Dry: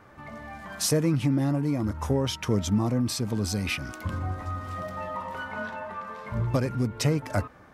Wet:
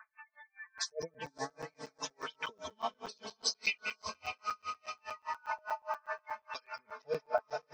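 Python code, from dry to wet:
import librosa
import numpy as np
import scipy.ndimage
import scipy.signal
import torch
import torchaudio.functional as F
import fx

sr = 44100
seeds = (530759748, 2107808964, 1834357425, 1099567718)

y = fx.filter_lfo_bandpass(x, sr, shape='sine', hz=0.66, low_hz=650.0, high_hz=4100.0, q=1.2)
y = fx.dynamic_eq(y, sr, hz=5300.0, q=0.94, threshold_db=-56.0, ratio=4.0, max_db=6)
y = fx.rider(y, sr, range_db=10, speed_s=2.0)
y = fx.peak_eq(y, sr, hz=220.0, db=-12.5, octaves=1.9)
y = y + 0.68 * np.pad(y, (int(4.6 * sr / 1000.0), 0))[:len(y)]
y = y + 10.0 ** (-10.0 / 20.0) * np.pad(y, (int(183 * sr / 1000.0), 0))[:len(y)]
y = fx.spec_gate(y, sr, threshold_db=-15, keep='strong')
y = fx.echo_diffused(y, sr, ms=546, feedback_pct=55, wet_db=-10.0)
y = fx.buffer_crackle(y, sr, first_s=0.78, period_s=0.12, block=256, kind='zero')
y = y * 10.0 ** (-38 * (0.5 - 0.5 * np.cos(2.0 * np.pi * 4.9 * np.arange(len(y)) / sr)) / 20.0)
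y = F.gain(torch.from_numpy(y), 3.5).numpy()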